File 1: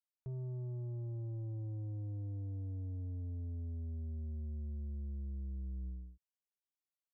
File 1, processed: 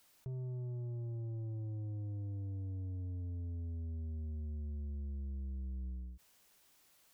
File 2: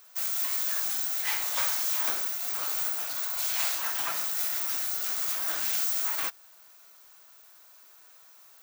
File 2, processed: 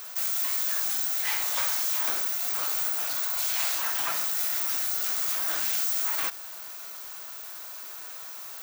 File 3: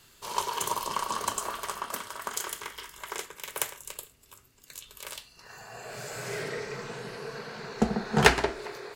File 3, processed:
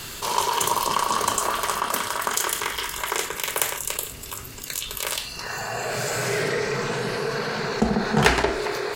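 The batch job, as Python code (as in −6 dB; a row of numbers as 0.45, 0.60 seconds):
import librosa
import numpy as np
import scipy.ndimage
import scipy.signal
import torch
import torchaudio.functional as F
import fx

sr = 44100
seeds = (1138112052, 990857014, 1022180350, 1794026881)

y = fx.env_flatten(x, sr, amount_pct=50)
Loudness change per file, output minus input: 0.0, +2.0, +7.0 LU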